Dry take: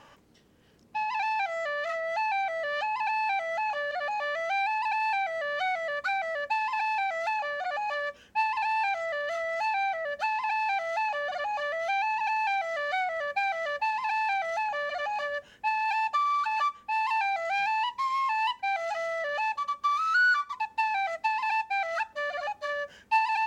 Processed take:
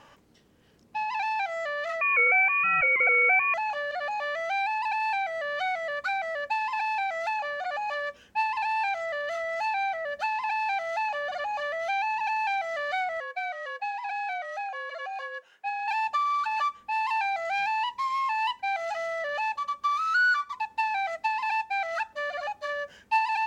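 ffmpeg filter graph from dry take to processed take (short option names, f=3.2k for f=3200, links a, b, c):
-filter_complex "[0:a]asettb=1/sr,asplit=3[a][b][c];[a]atrim=end=2.014[d];[b]atrim=start=2.01:end=3.54,asetpts=PTS-STARTPTS,afade=t=in:d=0.004:c=qsin,afade=t=out:st=1.526:d=0.004:c=qsin,acontrast=82,lowpass=f=2.6k:t=q:w=0.5098,lowpass=f=2.6k:t=q:w=0.6013,lowpass=f=2.6k:t=q:w=0.9,lowpass=f=2.6k:t=q:w=2.563,afreqshift=-3100[e];[c]atrim=start=3.536[f];[d][e]acrossfade=d=0.004:c1=hsin:c2=qsin[g];[g][f]acrossfade=d=0.004:c1=qsin:c2=hsin,asettb=1/sr,asplit=3[h][i][j];[h]atrim=end=13.204[k];[i]atrim=start=13.2:end=15.88,asetpts=PTS-STARTPTS,afade=t=in:d=0.004:c=qsin,afade=t=out:st=2.676:d=0.004:c=qsin,highpass=840,highshelf=f=2.2k:g=-7.5,afreqshift=-60[l];[j]atrim=start=15.876[m];[k][l]acrossfade=d=0.004:c1=hsin:c2=qsin[n];[n][m]acrossfade=d=0.004:c1=qsin:c2=hsin"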